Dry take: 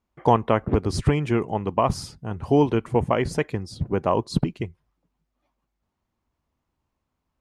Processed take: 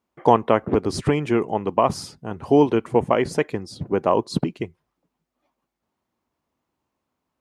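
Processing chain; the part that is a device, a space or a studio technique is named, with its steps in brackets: filter by subtraction (in parallel: low-pass 340 Hz 12 dB/octave + polarity flip); on the sum: trim +1.5 dB

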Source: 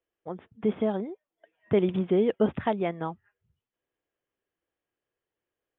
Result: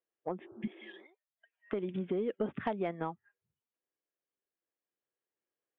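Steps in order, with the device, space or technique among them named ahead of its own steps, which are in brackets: 0.67–1.73 s: high-pass 1.1 kHz 12 dB/octave; spectral noise reduction 12 dB; AM radio (band-pass 160–3200 Hz; compression 4:1, threshold -36 dBFS, peak gain reduction 15 dB; saturation -24.5 dBFS, distortion -23 dB; tremolo 0.35 Hz, depth 33%); 0.42–1.03 s: spectral replace 260–1600 Hz before; trim +5 dB

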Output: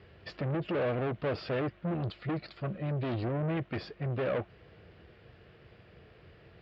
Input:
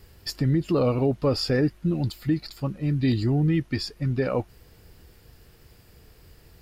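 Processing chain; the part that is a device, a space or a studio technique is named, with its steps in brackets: guitar amplifier (valve stage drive 31 dB, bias 0.4; tone controls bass -1 dB, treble -6 dB; cabinet simulation 100–3500 Hz, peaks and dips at 260 Hz -6 dB, 620 Hz +4 dB, 900 Hz -5 dB); trim +3 dB

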